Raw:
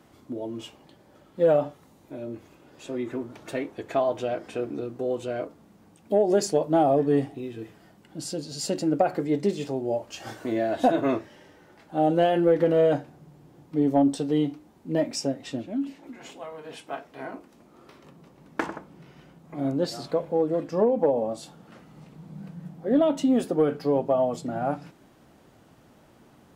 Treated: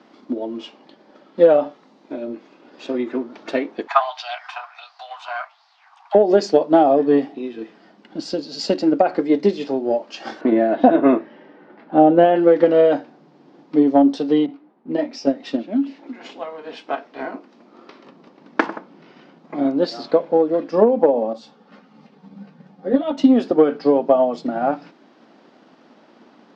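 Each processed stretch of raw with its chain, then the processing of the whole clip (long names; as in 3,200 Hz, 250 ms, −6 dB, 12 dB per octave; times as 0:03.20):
0:03.87–0:06.15: Butterworth high-pass 720 Hz 72 dB per octave + auto-filter bell 1.4 Hz 950–4,700 Hz +14 dB
0:10.41–0:12.36: low-pass filter 2,400 Hz + low-shelf EQ 350 Hz +6.5 dB
0:14.46–0:15.27: downward expander −56 dBFS + low-pass that shuts in the quiet parts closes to 1,500 Hz, open at −20.5 dBFS + micro pitch shift up and down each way 29 cents
0:21.33–0:23.18: notch comb filter 330 Hz + string-ensemble chorus
whole clip: elliptic band-pass filter 220–5,000 Hz, stop band 50 dB; transient designer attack +5 dB, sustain −1 dB; boost into a limiter +7.5 dB; level −1 dB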